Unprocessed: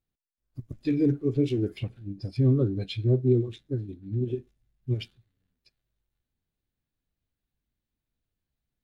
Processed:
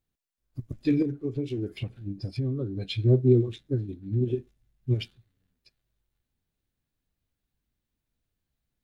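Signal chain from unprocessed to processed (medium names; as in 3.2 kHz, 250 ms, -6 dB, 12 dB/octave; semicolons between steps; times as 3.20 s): 1.02–2.90 s: compression 5:1, threshold -30 dBFS, peak gain reduction 11.5 dB; trim +2.5 dB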